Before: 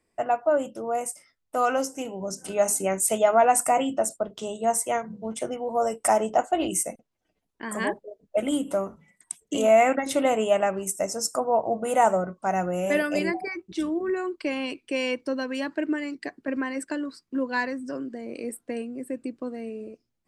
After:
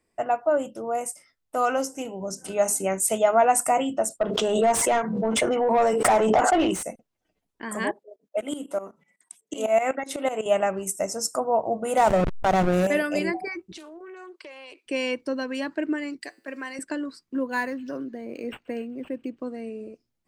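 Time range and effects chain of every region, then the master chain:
4.21–6.83 s: dynamic bell 610 Hz, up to -5 dB, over -34 dBFS, Q 1.9 + overdrive pedal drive 22 dB, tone 1.2 kHz, clips at -10 dBFS + swell ahead of each attack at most 35 dB/s
7.91–10.46 s: high-pass 260 Hz + tremolo saw up 8 Hz, depth 85%
11.97–12.87 s: hysteresis with a dead band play -22.5 dBFS + level flattener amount 70%
13.77–14.86 s: high-pass 410 Hz 24 dB/octave + compression, threshold -40 dBFS + loudspeaker Doppler distortion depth 0.15 ms
16.21–16.79 s: RIAA curve recording + feedback comb 110 Hz, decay 0.51 s, mix 40%
17.42–19.40 s: feedback echo behind a high-pass 132 ms, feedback 58%, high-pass 3.4 kHz, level -24 dB + decimation joined by straight lines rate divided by 4×
whole clip: none

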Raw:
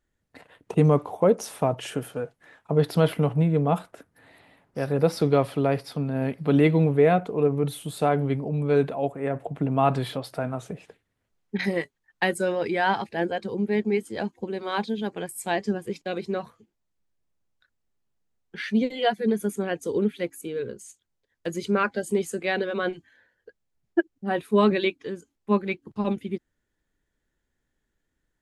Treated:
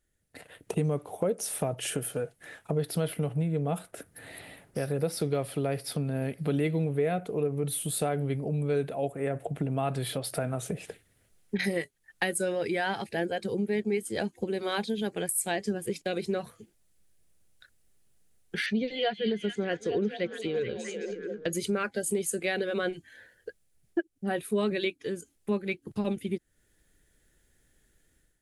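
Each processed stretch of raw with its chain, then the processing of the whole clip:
18.66–21.53 s: low-pass 5.1 kHz 24 dB/octave + repeats whose band climbs or falls 215 ms, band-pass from 3.8 kHz, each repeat -0.7 oct, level -4 dB
whole clip: level rider gain up to 11 dB; fifteen-band graphic EQ 250 Hz -4 dB, 1 kHz -9 dB, 10 kHz +12 dB; compression 2.5:1, threshold -32 dBFS

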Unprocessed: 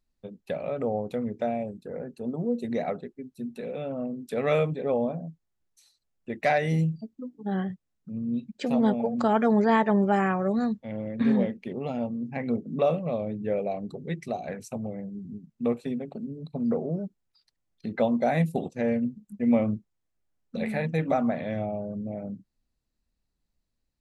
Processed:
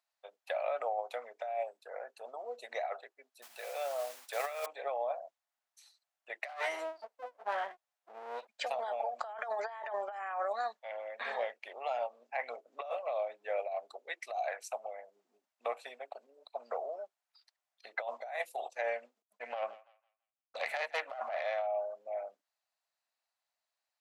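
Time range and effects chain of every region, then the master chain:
3.42–4.66 s: hum notches 60/120/180/240/300/360 Hz + modulation noise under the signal 17 dB
6.48–8.47 s: comb filter that takes the minimum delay 9.6 ms + bass shelf 460 Hz +10.5 dB
19.22–21.67 s: self-modulated delay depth 0.2 ms + expander -44 dBFS + thinning echo 166 ms, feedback 31%, high-pass 820 Hz, level -22.5 dB
whole clip: elliptic high-pass 660 Hz, stop band 80 dB; tilt EQ -1.5 dB/octave; compressor with a negative ratio -36 dBFS, ratio -1

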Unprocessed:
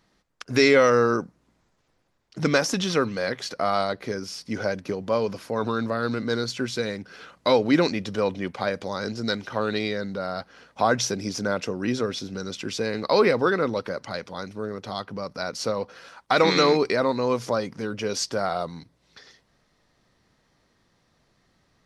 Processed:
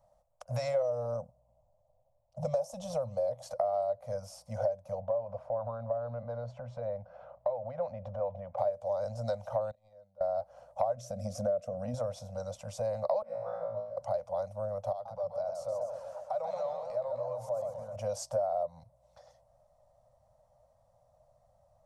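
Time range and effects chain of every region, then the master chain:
0.82–3.43 s: peaking EQ 1.6 kHz -11.5 dB 1.1 oct + tape noise reduction on one side only decoder only
5.00–8.58 s: low-pass 2.1 kHz + compression 2:1, threshold -33 dBFS
9.71–10.21 s: gate -24 dBFS, range -27 dB + compression, threshold -41 dBFS + slow attack 208 ms
10.96–11.94 s: Butterworth band-stop 890 Hz, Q 2.4 + peaking EQ 260 Hz +13 dB 1.1 oct + compression 3:1, threshold -18 dBFS
13.22–13.97 s: treble shelf 7.3 kHz -10 dB + feedback comb 56 Hz, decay 0.79 s, mix 100% + three bands expanded up and down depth 70%
14.92–17.96 s: compression 2.5:1, threshold -41 dBFS + hum notches 50/100/150/200/250/300/350 Hz + modulated delay 128 ms, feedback 61%, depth 215 cents, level -6 dB
whole clip: FFT filter 120 Hz 0 dB, 190 Hz -14 dB, 380 Hz -22 dB, 600 Hz +14 dB, 1.7 kHz -22 dB, 4.4 kHz -21 dB, 8.2 kHz -6 dB; compression 6:1, threshold -28 dBFS; elliptic band-stop 240–500 Hz

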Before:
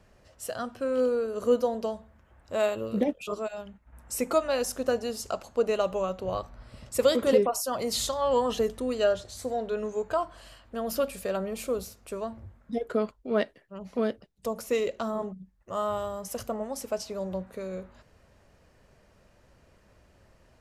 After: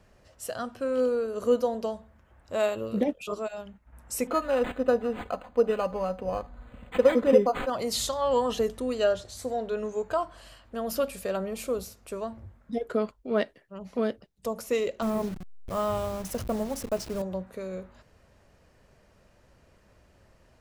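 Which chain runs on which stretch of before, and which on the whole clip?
4.27–7.70 s: comb 4 ms, depth 55% + decimation joined by straight lines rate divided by 8×
15.02–17.22 s: send-on-delta sampling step -39 dBFS + bass shelf 270 Hz +10 dB
whole clip: none

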